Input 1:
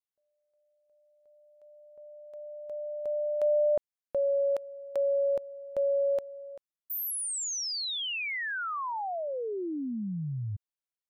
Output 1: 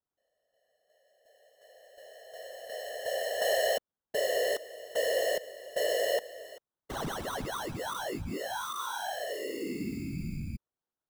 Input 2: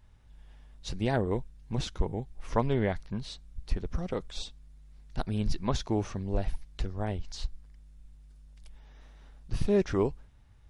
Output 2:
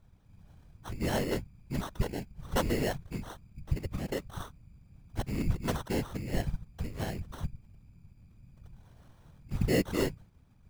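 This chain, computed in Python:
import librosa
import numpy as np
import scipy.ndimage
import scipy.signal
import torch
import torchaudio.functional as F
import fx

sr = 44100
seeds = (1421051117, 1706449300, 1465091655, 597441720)

y = fx.sample_hold(x, sr, seeds[0], rate_hz=2400.0, jitter_pct=0)
y = fx.whisperise(y, sr, seeds[1])
y = y * librosa.db_to_amplitude(-2.5)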